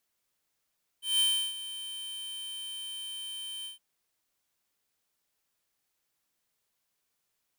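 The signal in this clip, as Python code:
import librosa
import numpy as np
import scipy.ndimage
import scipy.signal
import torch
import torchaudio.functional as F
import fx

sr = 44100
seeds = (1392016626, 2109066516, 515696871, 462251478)

y = fx.adsr_tone(sr, wave='square', hz=3100.0, attack_ms=175.0, decay_ms=335.0, sustain_db=-15.0, held_s=2.63, release_ms=134.0, level_db=-24.5)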